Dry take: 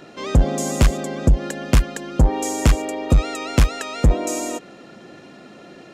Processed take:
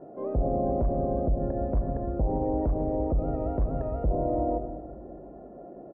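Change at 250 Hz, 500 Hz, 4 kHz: -6.5 dB, -2.0 dB, under -40 dB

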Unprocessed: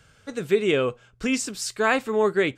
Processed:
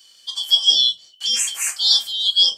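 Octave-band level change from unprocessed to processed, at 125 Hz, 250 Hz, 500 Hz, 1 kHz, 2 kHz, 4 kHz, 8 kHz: under -25 dB, under -25 dB, under -25 dB, -16.0 dB, -9.0 dB, +22.0 dB, +10.5 dB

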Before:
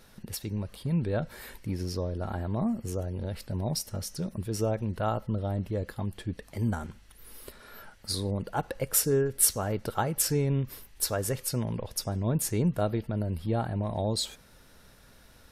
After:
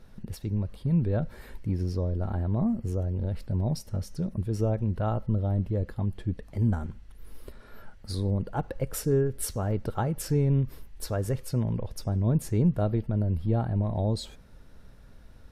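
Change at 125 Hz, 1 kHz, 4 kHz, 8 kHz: +4.5, -2.5, -8.5, -11.0 dB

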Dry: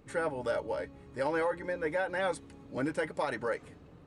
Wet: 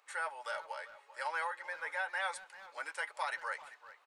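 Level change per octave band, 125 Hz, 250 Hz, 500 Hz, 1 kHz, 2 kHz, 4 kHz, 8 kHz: under -40 dB, under -30 dB, -15.0 dB, -2.0 dB, 0.0 dB, 0.0 dB, 0.0 dB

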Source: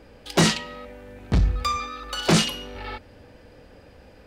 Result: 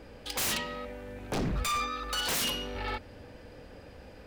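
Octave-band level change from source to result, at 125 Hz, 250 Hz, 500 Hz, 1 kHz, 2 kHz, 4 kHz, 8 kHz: -13.5, -12.5, -8.5, -5.5, -5.5, -6.0, -4.5 dB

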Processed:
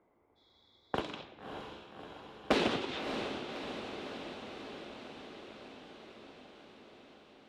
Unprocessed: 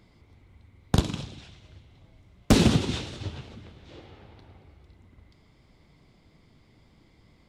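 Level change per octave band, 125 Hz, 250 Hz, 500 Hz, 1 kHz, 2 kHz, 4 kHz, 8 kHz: -21.5, -11.5, -3.0, -1.0, -2.0, -6.0, -16.5 dB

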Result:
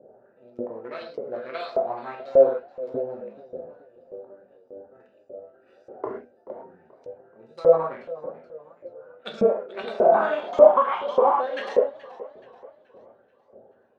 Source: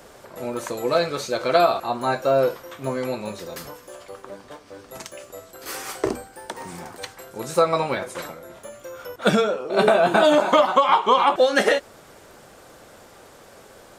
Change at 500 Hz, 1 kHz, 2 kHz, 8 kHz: -0.5 dB, -5.0 dB, -11.5 dB, under -25 dB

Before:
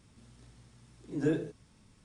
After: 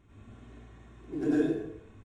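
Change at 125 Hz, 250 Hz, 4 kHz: -3.0 dB, +5.5 dB, n/a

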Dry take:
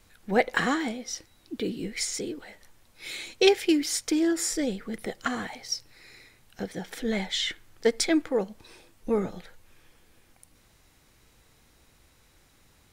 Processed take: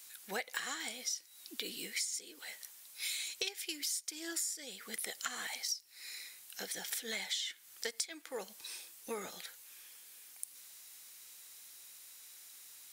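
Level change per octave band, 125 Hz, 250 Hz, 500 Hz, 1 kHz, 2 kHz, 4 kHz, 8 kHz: under -20 dB, -24.5 dB, -20.0 dB, -14.5 dB, -9.5 dB, -7.0 dB, -4.0 dB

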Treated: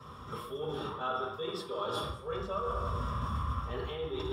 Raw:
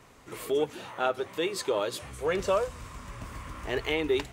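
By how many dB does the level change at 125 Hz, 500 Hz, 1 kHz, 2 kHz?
+5.0, -8.0, -1.0, -11.0 dB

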